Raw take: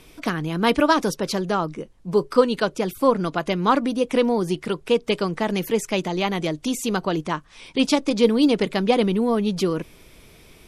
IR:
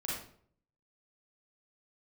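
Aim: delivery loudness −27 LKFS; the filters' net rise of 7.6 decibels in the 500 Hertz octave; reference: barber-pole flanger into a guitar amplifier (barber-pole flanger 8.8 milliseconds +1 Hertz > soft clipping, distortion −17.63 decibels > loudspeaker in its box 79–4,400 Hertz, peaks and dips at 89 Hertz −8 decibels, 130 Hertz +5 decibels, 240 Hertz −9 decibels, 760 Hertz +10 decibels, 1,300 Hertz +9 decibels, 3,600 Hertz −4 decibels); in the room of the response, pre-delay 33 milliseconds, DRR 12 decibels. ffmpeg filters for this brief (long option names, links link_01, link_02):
-filter_complex "[0:a]equalizer=frequency=500:width_type=o:gain=7.5,asplit=2[link_01][link_02];[1:a]atrim=start_sample=2205,adelay=33[link_03];[link_02][link_03]afir=irnorm=-1:irlink=0,volume=-15dB[link_04];[link_01][link_04]amix=inputs=2:normalize=0,asplit=2[link_05][link_06];[link_06]adelay=8.8,afreqshift=1[link_07];[link_05][link_07]amix=inputs=2:normalize=1,asoftclip=threshold=-4.5dB,highpass=79,equalizer=frequency=89:width_type=q:width=4:gain=-8,equalizer=frequency=130:width_type=q:width=4:gain=5,equalizer=frequency=240:width_type=q:width=4:gain=-9,equalizer=frequency=760:width_type=q:width=4:gain=10,equalizer=frequency=1300:width_type=q:width=4:gain=9,equalizer=frequency=3600:width_type=q:width=4:gain=-4,lowpass=frequency=4400:width=0.5412,lowpass=frequency=4400:width=1.3066,volume=-7dB"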